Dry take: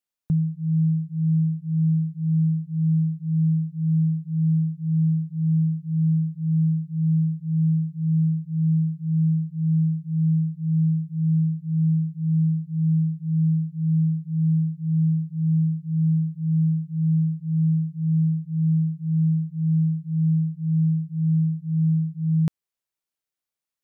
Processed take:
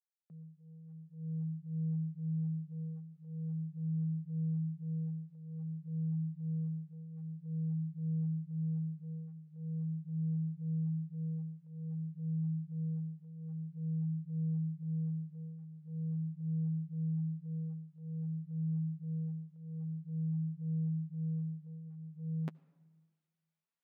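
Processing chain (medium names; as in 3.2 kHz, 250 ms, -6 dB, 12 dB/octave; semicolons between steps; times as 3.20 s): fade-in on the opening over 2.32 s; transient shaper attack -4 dB, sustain +1 dB; high-pass 180 Hz 24 dB/octave; compression, threshold -28 dBFS, peak gain reduction 5 dB; tone controls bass -5 dB, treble -13 dB; on a send at -22 dB: reverberation RT60 1.4 s, pre-delay 67 ms; on the sum: flange 0.16 Hz, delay 0.8 ms, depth 8.7 ms, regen -24%; trim +1 dB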